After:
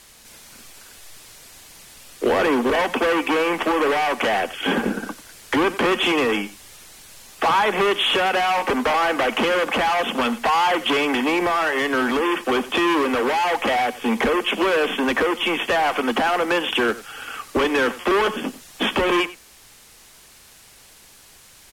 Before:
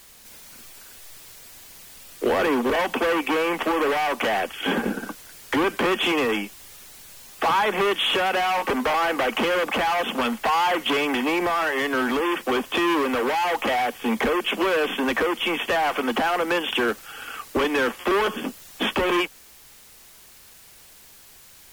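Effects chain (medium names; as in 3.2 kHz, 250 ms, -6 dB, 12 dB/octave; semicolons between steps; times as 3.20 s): low-pass 12 kHz 12 dB/octave; on a send: delay 92 ms -17.5 dB; on the sum: trim +2.5 dB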